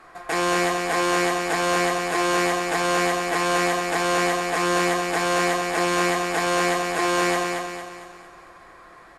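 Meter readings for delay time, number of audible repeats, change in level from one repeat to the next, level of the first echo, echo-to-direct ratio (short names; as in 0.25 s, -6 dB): 0.227 s, 5, -6.5 dB, -4.5 dB, -3.5 dB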